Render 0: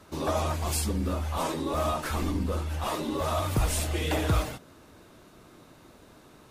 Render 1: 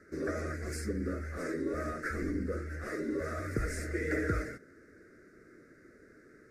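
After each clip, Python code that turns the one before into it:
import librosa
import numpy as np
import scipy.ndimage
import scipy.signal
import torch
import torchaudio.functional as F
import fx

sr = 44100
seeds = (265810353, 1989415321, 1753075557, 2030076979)

y = fx.curve_eq(x, sr, hz=(150.0, 440.0, 620.0, 930.0, 1400.0, 2000.0, 3100.0, 5000.0, 8900.0, 15000.0), db=(0, 10, -2, -26, 10, 12, -27, -1, -5, -13))
y = y * 10.0 ** (-9.0 / 20.0)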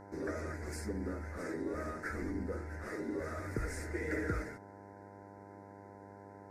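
y = fx.dmg_buzz(x, sr, base_hz=100.0, harmonics=10, level_db=-49.0, tilt_db=-1, odd_only=False)
y = y * 10.0 ** (-4.0 / 20.0)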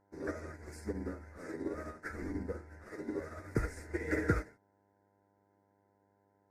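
y = fx.upward_expand(x, sr, threshold_db=-50.0, expansion=2.5)
y = y * 10.0 ** (8.0 / 20.0)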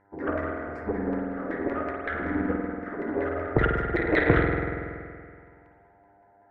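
y = fx.filter_lfo_lowpass(x, sr, shape='saw_down', hz=5.3, low_hz=630.0, high_hz=2200.0, q=3.4)
y = fx.rev_spring(y, sr, rt60_s=2.2, pass_ms=(47,), chirp_ms=50, drr_db=-1.0)
y = fx.cheby_harmonics(y, sr, harmonics=(2,), levels_db=(-7,), full_scale_db=-14.0)
y = y * 10.0 ** (6.5 / 20.0)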